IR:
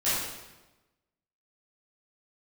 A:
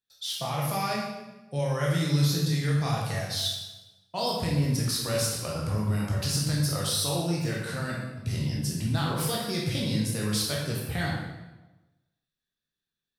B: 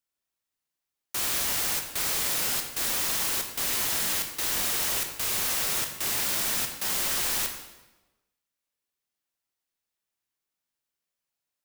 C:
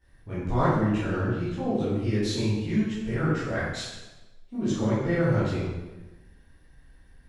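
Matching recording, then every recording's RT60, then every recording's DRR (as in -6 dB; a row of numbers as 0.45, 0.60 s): C; 1.1, 1.1, 1.1 s; -4.0, 4.0, -14.0 dB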